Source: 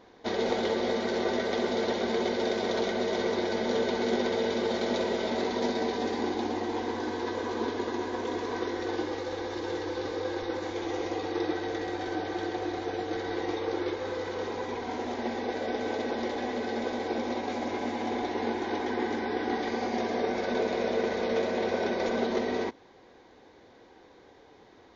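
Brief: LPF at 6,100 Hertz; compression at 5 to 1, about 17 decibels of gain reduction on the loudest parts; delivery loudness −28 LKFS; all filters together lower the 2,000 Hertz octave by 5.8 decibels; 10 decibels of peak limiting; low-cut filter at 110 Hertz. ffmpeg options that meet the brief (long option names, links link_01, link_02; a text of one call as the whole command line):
ffmpeg -i in.wav -af "highpass=110,lowpass=6100,equalizer=frequency=2000:width_type=o:gain=-7.5,acompressor=threshold=-45dB:ratio=5,volume=23.5dB,alimiter=limit=-19.5dB:level=0:latency=1" out.wav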